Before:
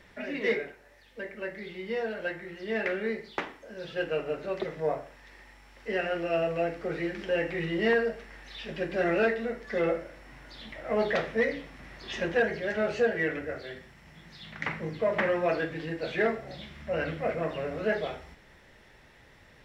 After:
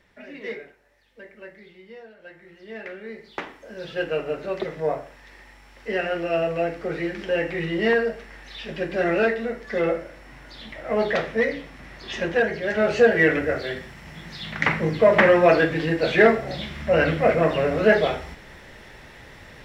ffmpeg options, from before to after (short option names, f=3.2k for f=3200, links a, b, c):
-af "volume=21dB,afade=t=out:st=1.44:d=0.73:silence=0.334965,afade=t=in:st=2.17:d=0.32:silence=0.375837,afade=t=in:st=3.07:d=0.61:silence=0.281838,afade=t=in:st=12.59:d=0.71:silence=0.446684"